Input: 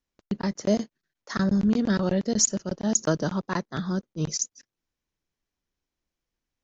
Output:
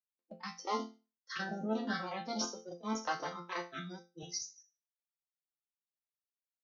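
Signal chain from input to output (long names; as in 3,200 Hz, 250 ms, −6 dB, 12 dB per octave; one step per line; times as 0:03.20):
wavefolder on the positive side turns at −23 dBFS
high-pass filter 250 Hz 12 dB per octave
noise reduction from a noise print of the clip's start 28 dB
Butterworth low-pass 5,900 Hz 72 dB per octave
resonators tuned to a chord F3 major, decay 0.3 s
0:03.75–0:04.23: multiband upward and downward expander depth 40%
level +10.5 dB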